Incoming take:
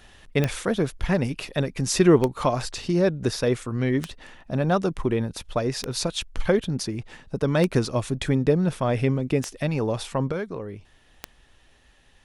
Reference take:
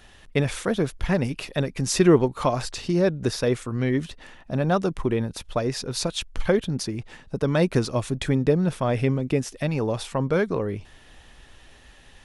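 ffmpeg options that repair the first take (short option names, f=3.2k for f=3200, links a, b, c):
-af "adeclick=t=4,asetnsamples=n=441:p=0,asendcmd='10.32 volume volume 7.5dB',volume=0dB"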